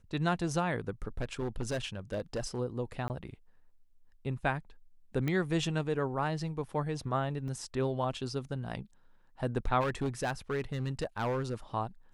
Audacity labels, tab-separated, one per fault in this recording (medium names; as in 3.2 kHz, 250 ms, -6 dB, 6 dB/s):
1.180000	2.590000	clipped -29.5 dBFS
3.080000	3.100000	dropout 19 ms
5.280000	5.280000	pop -20 dBFS
7.480000	7.480000	dropout 2.4 ms
9.800000	11.540000	clipped -27.5 dBFS